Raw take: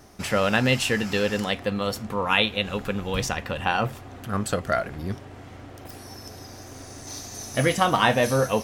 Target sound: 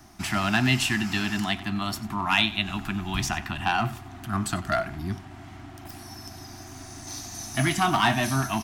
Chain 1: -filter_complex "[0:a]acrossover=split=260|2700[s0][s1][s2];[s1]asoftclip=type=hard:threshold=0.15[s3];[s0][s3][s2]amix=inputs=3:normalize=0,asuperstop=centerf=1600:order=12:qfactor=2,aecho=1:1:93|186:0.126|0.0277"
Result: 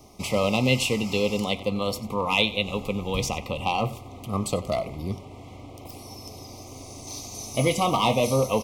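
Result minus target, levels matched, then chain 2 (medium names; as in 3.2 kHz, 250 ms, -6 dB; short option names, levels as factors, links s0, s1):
500 Hz band +9.0 dB
-filter_complex "[0:a]acrossover=split=260|2700[s0][s1][s2];[s1]asoftclip=type=hard:threshold=0.15[s3];[s0][s3][s2]amix=inputs=3:normalize=0,asuperstop=centerf=490:order=12:qfactor=2,aecho=1:1:93|186:0.126|0.0277"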